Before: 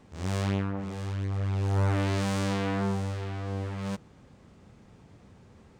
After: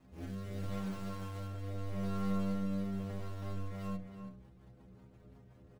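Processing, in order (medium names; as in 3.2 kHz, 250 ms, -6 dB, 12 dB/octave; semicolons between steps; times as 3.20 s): square wave that keeps the level; treble shelf 2 kHz -7 dB, from 1.47 s -12 dB; peak limiter -24.5 dBFS, peak gain reduction 8 dB; rotary cabinet horn 0.8 Hz, later 5.5 Hz, at 3.28 s; inharmonic resonator 61 Hz, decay 0.47 s, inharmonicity 0.008; echo from a far wall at 56 m, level -8 dB; trim +2 dB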